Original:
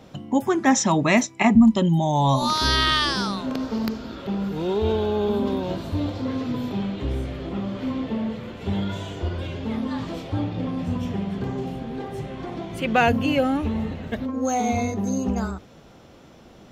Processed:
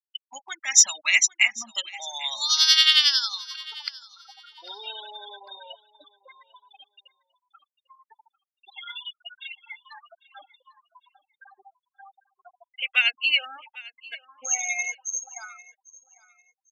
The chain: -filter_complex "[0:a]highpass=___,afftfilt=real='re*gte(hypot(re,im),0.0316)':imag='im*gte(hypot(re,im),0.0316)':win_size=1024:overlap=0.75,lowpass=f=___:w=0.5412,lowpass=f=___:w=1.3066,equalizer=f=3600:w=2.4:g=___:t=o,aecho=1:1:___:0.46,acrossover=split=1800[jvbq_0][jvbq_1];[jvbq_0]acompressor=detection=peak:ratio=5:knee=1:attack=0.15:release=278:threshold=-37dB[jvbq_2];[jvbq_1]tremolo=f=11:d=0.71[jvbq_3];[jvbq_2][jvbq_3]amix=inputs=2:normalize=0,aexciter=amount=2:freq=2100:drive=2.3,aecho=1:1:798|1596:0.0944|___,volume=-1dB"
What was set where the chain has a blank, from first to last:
1400, 8200, 8200, 9.5, 1.4, 0.0217